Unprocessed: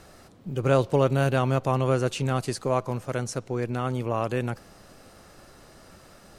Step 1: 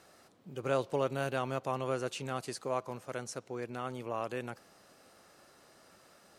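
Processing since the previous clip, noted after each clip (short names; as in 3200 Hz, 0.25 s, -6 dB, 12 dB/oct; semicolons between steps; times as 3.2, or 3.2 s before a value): HPF 350 Hz 6 dB/oct; gain -7.5 dB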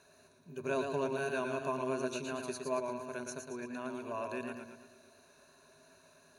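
ripple EQ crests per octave 1.5, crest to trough 15 dB; warbling echo 0.114 s, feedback 51%, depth 60 cents, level -5.5 dB; gain -5.5 dB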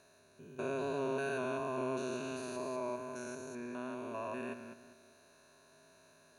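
stepped spectrum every 0.2 s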